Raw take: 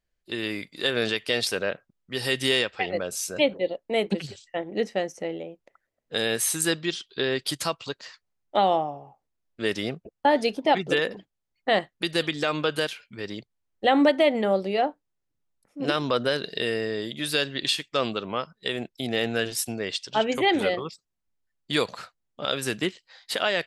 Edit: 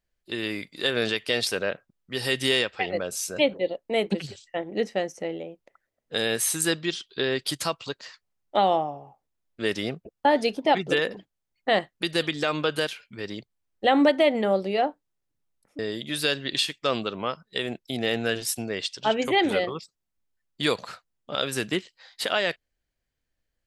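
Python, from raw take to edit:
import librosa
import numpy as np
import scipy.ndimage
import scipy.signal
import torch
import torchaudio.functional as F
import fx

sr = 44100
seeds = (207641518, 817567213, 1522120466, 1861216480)

y = fx.edit(x, sr, fx.cut(start_s=15.79, length_s=1.1), tone=tone)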